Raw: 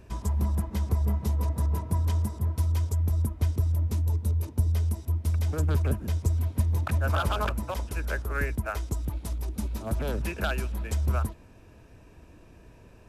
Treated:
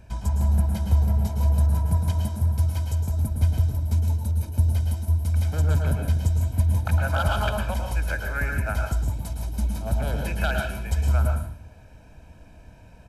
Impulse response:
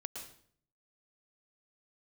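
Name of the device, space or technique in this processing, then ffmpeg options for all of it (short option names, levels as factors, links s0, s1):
microphone above a desk: -filter_complex "[0:a]aecho=1:1:1.3:0.61[s0];[1:a]atrim=start_sample=2205[s1];[s0][s1]afir=irnorm=-1:irlink=0,volume=1.5"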